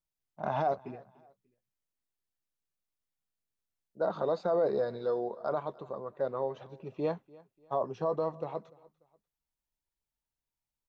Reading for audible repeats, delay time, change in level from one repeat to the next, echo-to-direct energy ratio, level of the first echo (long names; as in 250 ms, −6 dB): 2, 294 ms, −9.0 dB, −22.5 dB, −23.0 dB